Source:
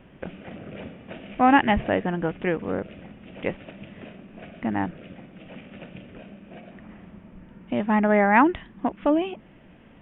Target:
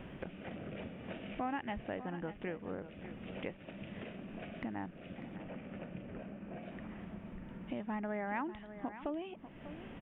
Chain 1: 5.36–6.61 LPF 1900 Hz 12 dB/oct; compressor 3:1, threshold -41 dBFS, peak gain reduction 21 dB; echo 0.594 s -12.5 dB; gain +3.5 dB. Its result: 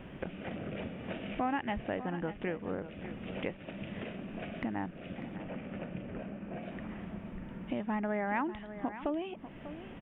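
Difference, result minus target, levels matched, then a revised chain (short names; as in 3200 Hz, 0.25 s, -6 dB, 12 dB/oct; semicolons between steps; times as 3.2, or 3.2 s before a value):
compressor: peak gain reduction -5 dB
5.36–6.61 LPF 1900 Hz 12 dB/oct; compressor 3:1, threshold -48.5 dBFS, peak gain reduction 26 dB; echo 0.594 s -12.5 dB; gain +3.5 dB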